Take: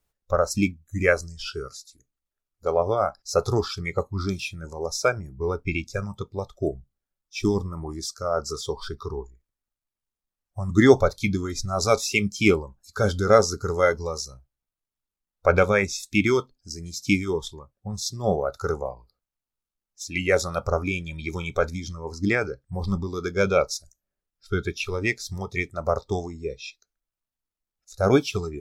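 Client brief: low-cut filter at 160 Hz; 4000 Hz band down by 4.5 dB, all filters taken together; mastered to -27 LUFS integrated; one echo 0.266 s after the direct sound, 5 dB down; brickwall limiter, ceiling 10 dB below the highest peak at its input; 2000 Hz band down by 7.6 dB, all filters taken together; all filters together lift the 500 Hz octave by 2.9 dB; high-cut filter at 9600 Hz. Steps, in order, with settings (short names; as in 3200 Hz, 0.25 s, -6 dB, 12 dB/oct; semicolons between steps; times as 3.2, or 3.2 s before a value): HPF 160 Hz; LPF 9600 Hz; bell 500 Hz +4 dB; bell 2000 Hz -9 dB; bell 4000 Hz -4 dB; limiter -9.5 dBFS; echo 0.266 s -5 dB; gain -2 dB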